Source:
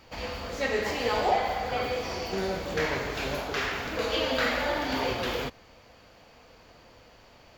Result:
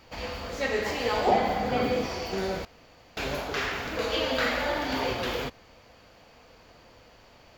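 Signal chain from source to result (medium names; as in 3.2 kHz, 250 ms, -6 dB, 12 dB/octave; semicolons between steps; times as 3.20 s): 1.27–2.06 s: peaking EQ 220 Hz +12.5 dB 1.5 oct; 2.65–3.17 s: room tone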